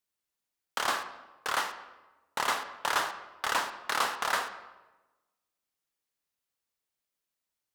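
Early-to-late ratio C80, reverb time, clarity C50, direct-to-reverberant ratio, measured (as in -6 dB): 12.5 dB, 1.1 s, 10.5 dB, 9.0 dB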